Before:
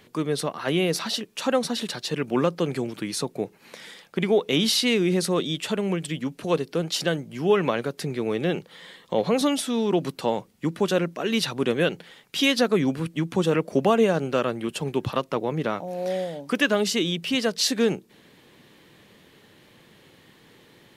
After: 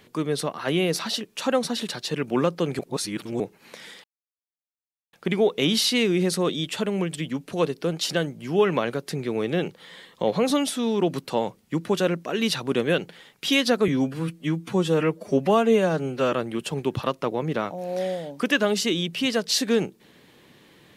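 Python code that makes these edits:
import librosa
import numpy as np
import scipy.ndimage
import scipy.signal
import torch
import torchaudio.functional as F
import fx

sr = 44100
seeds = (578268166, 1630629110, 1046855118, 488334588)

y = fx.edit(x, sr, fx.reverse_span(start_s=2.79, length_s=0.61),
    fx.insert_silence(at_s=4.04, length_s=1.09),
    fx.stretch_span(start_s=12.79, length_s=1.63, factor=1.5), tone=tone)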